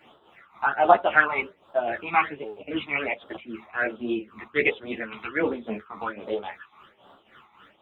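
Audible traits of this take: phasing stages 12, 1.3 Hz, lowest notch 510–2200 Hz; tremolo triangle 3.7 Hz, depth 80%; a shimmering, thickened sound

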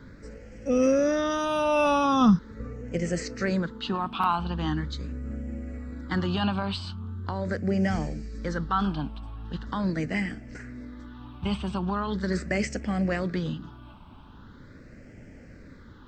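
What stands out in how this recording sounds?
phasing stages 6, 0.41 Hz, lowest notch 500–1000 Hz

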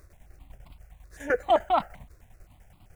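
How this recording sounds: a quantiser's noise floor 10-bit, dither none; tremolo saw down 10 Hz, depth 70%; notches that jump at a steady rate 7.7 Hz 830–1700 Hz

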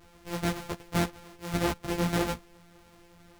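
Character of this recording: a buzz of ramps at a fixed pitch in blocks of 256 samples; a shimmering, thickened sound

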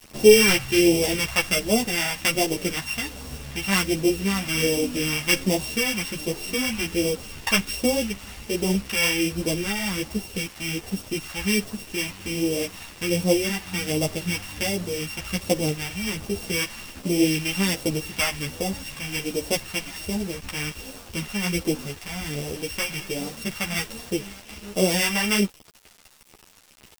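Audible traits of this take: a buzz of ramps at a fixed pitch in blocks of 16 samples; phasing stages 2, 1.3 Hz, lowest notch 410–1500 Hz; a quantiser's noise floor 8-bit, dither none; a shimmering, thickened sound

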